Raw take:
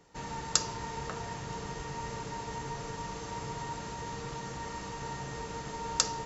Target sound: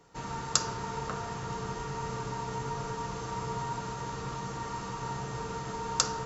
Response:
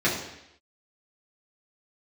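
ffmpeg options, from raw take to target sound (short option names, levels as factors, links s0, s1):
-filter_complex "[0:a]asplit=2[s0][s1];[s1]highshelf=f=2100:t=q:w=3:g=-11.5[s2];[1:a]atrim=start_sample=2205,asetrate=27342,aresample=44100[s3];[s2][s3]afir=irnorm=-1:irlink=0,volume=0.0668[s4];[s0][s4]amix=inputs=2:normalize=0"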